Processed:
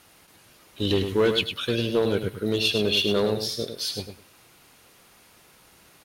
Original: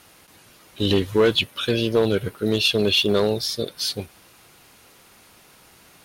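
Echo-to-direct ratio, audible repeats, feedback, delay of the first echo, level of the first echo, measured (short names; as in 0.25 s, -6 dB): -7.5 dB, 2, 18%, 0.103 s, -7.5 dB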